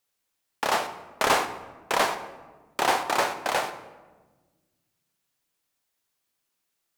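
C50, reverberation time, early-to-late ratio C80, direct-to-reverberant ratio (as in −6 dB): 11.0 dB, 1.3 s, 13.0 dB, 8.0 dB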